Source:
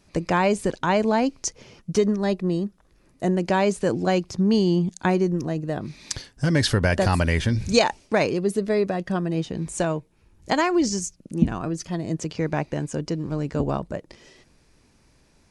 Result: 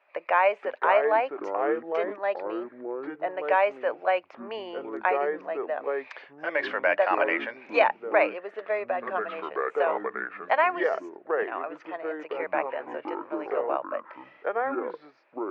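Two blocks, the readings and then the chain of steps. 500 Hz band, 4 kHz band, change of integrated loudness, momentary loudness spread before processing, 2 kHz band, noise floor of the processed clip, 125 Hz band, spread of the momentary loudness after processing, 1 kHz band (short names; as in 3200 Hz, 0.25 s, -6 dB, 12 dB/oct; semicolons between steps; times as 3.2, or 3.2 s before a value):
-1.5 dB, -12.5 dB, -4.0 dB, 9 LU, +1.5 dB, -56 dBFS, under -35 dB, 13 LU, +1.5 dB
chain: elliptic band-pass 570–2500 Hz, stop band 80 dB; echoes that change speed 0.433 s, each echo -5 st, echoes 2, each echo -6 dB; gain +1.5 dB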